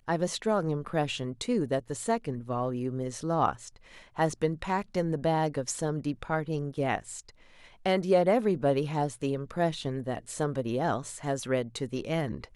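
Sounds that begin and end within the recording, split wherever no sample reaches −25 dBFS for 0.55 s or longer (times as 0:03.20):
0:04.19–0:06.98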